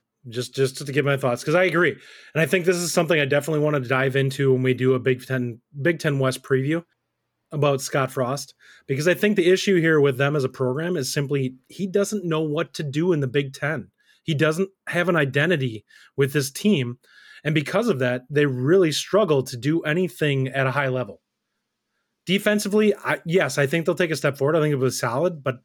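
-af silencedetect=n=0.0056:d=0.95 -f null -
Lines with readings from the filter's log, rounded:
silence_start: 21.16
silence_end: 22.27 | silence_duration: 1.11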